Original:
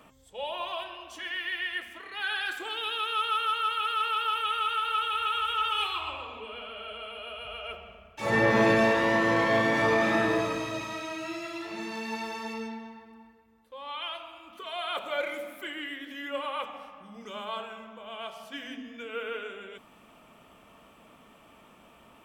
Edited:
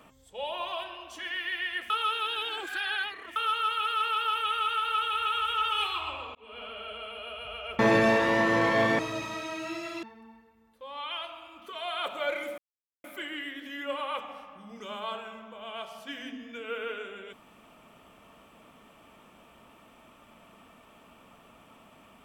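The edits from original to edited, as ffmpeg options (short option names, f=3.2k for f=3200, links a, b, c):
-filter_complex "[0:a]asplit=8[a][b][c][d][e][f][g][h];[a]atrim=end=1.902[i];[b]atrim=start=1.898:end=3.362,asetpts=PTS-STARTPTS,areverse[j];[c]atrim=start=3.358:end=6.35,asetpts=PTS-STARTPTS,afade=t=out:st=2.988:d=0.004:c=hsin[k];[d]atrim=start=6.35:end=7.792,asetpts=PTS-STARTPTS,afade=t=in:d=0.29[l];[e]atrim=start=8.538:end=9.742[m];[f]atrim=start=10.578:end=11.622[n];[g]atrim=start=12.938:end=15.49,asetpts=PTS-STARTPTS,afade=t=out:st=2.548:d=0.004:c=hsin,apad=pad_dur=0.46[o];[h]atrim=start=15.49,asetpts=PTS-STARTPTS,afade=t=in:d=0.004:c=hsin[p];[i][j]acrossfade=d=0.004:c1=hsin:c2=hsin[q];[k][l]concat=n=2:v=0:a=1[r];[q][r]acrossfade=d=0.004:c1=hsin:c2=hsin[s];[s][m]acrossfade=d=0.004:c1=hsin:c2=hsin[t];[t][n]acrossfade=d=0.004:c1=hsin:c2=hsin[u];[o][p]concat=n=2:v=0:a=1[v];[u][v]acrossfade=d=0.004:c1=hsin:c2=hsin"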